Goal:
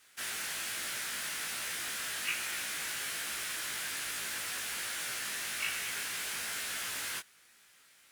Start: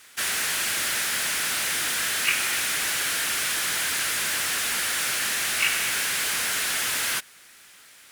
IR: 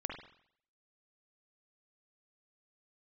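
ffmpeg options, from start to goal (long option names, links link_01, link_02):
-af "flanger=delay=17:depth=2.1:speed=1.2,volume=-8.5dB"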